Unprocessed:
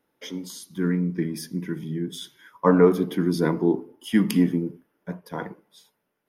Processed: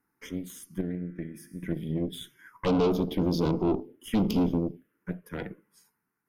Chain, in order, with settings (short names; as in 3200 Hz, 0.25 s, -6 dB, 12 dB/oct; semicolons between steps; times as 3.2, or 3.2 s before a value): 0.81–1.63 resonator 69 Hz, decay 1.8 s, harmonics all, mix 70%; tube stage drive 24 dB, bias 0.8; envelope phaser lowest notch 570 Hz, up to 1800 Hz, full sweep at -27 dBFS; gain +4 dB